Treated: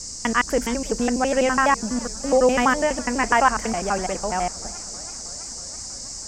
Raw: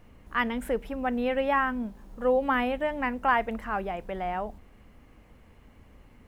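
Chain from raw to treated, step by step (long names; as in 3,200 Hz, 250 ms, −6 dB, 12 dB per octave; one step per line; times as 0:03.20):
slices reordered back to front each 83 ms, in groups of 3
noise in a band 4,800–8,100 Hz −42 dBFS
feedback echo with a swinging delay time 323 ms, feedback 79%, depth 163 cents, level −24 dB
level +7 dB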